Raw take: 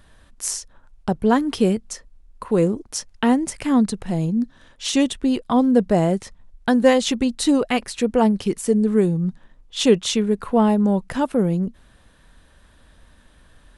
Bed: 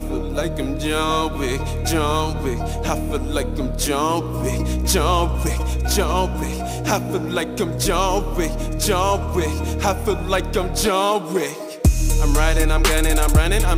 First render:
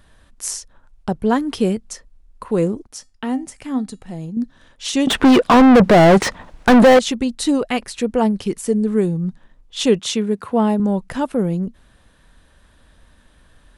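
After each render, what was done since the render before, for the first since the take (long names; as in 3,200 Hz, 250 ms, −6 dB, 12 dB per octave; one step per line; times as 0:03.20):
0:02.87–0:04.37: tuned comb filter 260 Hz, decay 0.23 s, harmonics odd
0:05.07–0:06.99: mid-hump overdrive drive 39 dB, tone 1,500 Hz, clips at −2 dBFS
0:09.99–0:10.80: high-pass filter 76 Hz 24 dB per octave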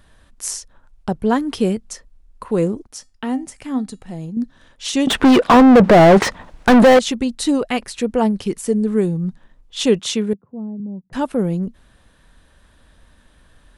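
0:05.42–0:06.25: mid-hump overdrive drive 23 dB, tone 1,300 Hz, clips at −3 dBFS
0:10.33–0:11.13: four-pole ladder band-pass 180 Hz, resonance 30%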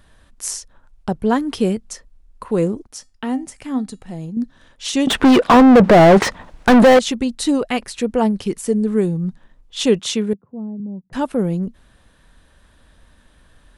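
no processing that can be heard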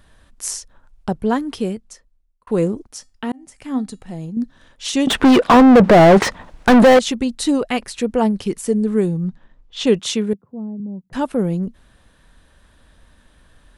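0:01.09–0:02.47: fade out
0:03.32–0:03.74: fade in
0:09.28–0:09.87: high-frequency loss of the air 93 metres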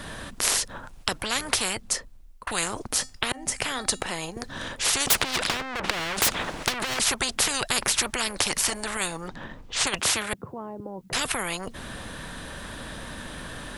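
compressor whose output falls as the input rises −15 dBFS, ratio −0.5
every bin compressed towards the loudest bin 10 to 1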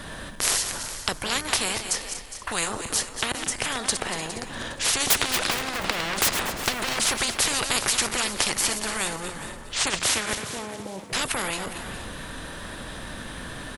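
feedback delay that plays each chunk backwards 119 ms, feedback 59%, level −8 dB
echo with shifted repeats 410 ms, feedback 30%, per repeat +63 Hz, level −14 dB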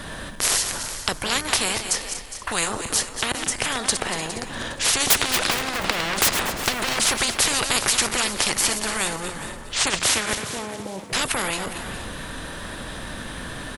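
level +3 dB
brickwall limiter −3 dBFS, peak gain reduction 2.5 dB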